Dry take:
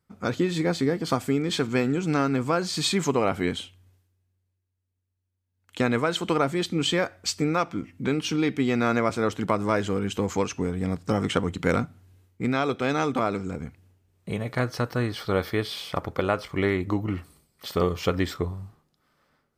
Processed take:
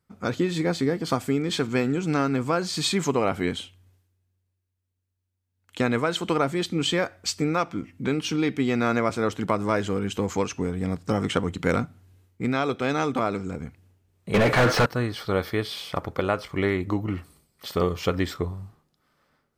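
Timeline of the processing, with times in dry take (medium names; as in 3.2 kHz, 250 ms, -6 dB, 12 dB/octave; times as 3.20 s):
14.34–14.86 s: overdrive pedal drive 38 dB, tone 1.6 kHz, clips at -10 dBFS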